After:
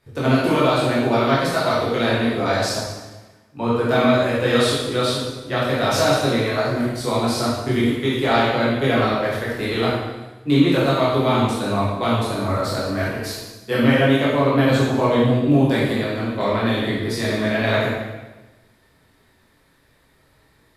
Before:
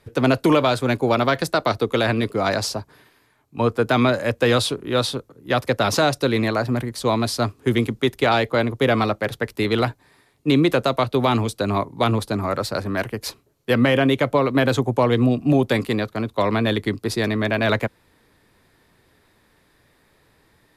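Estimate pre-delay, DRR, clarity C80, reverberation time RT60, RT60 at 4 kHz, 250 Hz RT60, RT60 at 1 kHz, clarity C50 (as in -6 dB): 13 ms, -8.5 dB, 2.0 dB, 1.1 s, 1.0 s, 1.3 s, 1.1 s, -1.0 dB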